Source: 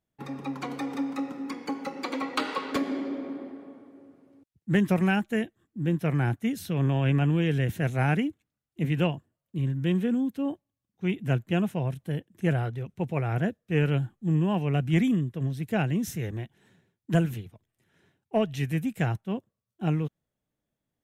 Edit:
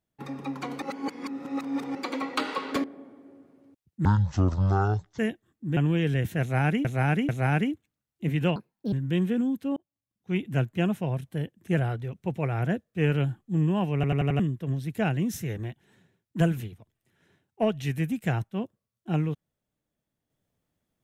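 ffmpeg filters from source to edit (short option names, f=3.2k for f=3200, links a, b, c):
-filter_complex "[0:a]asplit=17[a][b][c][d][e][f][g][h][i][j][k][l][m][n][o][p][q];[a]atrim=end=0.822[r];[b]atrim=start=0.818:end=1.952,asetpts=PTS-STARTPTS,areverse[s];[c]atrim=start=1.948:end=2.842[t];[d]atrim=start=3.528:end=4.744[u];[e]atrim=start=4.74:end=5.32,asetpts=PTS-STARTPTS,asetrate=22491,aresample=44100[v];[f]atrim=start=5.316:end=5.902[w];[g]atrim=start=7.208:end=8.292[x];[h]atrim=start=7.848:end=8.292[y];[i]atrim=start=7.848:end=9.124[z];[j]atrim=start=9.12:end=9.66,asetpts=PTS-STARTPTS,asetrate=64827,aresample=44100[aa];[k]atrim=start=9.656:end=10.5,asetpts=PTS-STARTPTS,afade=t=out:st=0.84:d=0.004:c=hsin[ab];[l]atrim=start=10.5:end=14.772,asetpts=PTS-STARTPTS,afade=t=in:d=0.58[ac];[m]atrim=start=14.678:end=14.772[ad];[n]atrim=start=14.678:end=14.772[ae];[o]atrim=start=14.678:end=14.772[af];[p]atrim=start=14.678:end=14.772[ag];[q]atrim=start=15.128[ah];[r][s]acrossfade=d=0.004:c1=hsin:c2=hsin[ai];[ai][t]acrossfade=d=0.004:c1=hsin:c2=hsin[aj];[aj][u]acrossfade=d=0.004:c1=hsin:c2=hsin[ak];[ak][v]acrossfade=d=0.004:c1=hsin:c2=hsin[al];[al][w]acrossfade=d=0.004:c1=hsin:c2=hsin[am];[am][x]acrossfade=d=0.004:c1=hsin:c2=hsin[an];[an][y]acrossfade=d=0.004:c1=hsin:c2=hsin[ao];[ao][z]acrossfade=d=0.004:c1=hsin:c2=hsin[ap];[ap][aa]acrossfade=d=0.004:c1=hsin:c2=hsin[aq];[ab][ac]concat=n=2:v=0:a=1[ar];[aq][ar]acrossfade=d=0.004:c1=hsin:c2=hsin[as];[as][ad]acrossfade=d=0.004:c1=hsin:c2=hsin[at];[at][ae]acrossfade=d=0.004:c1=hsin:c2=hsin[au];[au][af]acrossfade=d=0.004:c1=hsin:c2=hsin[av];[av][ag]acrossfade=d=0.004:c1=hsin:c2=hsin[aw];[aw][ah]acrossfade=d=0.004:c1=hsin:c2=hsin"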